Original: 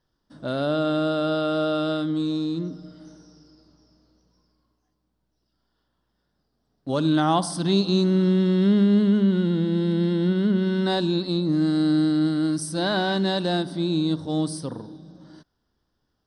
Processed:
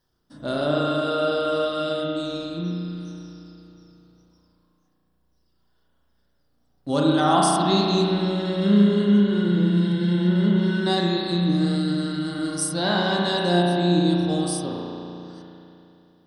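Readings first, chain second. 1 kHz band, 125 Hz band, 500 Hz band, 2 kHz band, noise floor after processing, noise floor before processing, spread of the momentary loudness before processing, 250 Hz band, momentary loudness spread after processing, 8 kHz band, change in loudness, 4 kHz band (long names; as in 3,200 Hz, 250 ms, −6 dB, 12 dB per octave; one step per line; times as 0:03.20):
+4.5 dB, +1.5 dB, +1.5 dB, +3.5 dB, −67 dBFS, −75 dBFS, 9 LU, 0.0 dB, 13 LU, +6.5 dB, +1.0 dB, +3.0 dB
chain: reverb reduction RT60 1.1 s
high-shelf EQ 6,300 Hz +10.5 dB
spring reverb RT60 2.9 s, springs 34 ms, chirp 80 ms, DRR −3.5 dB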